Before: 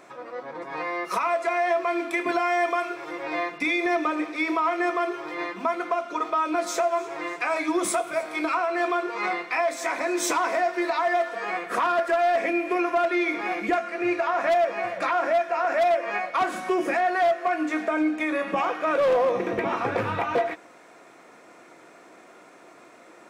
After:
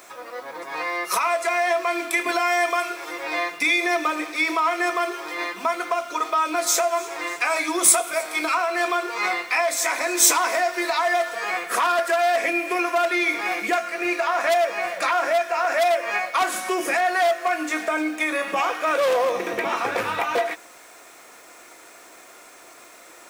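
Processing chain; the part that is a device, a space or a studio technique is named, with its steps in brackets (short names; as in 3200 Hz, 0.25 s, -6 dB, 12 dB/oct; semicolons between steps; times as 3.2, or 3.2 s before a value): turntable without a phono preamp (RIAA curve recording; white noise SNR 34 dB); gain +2.5 dB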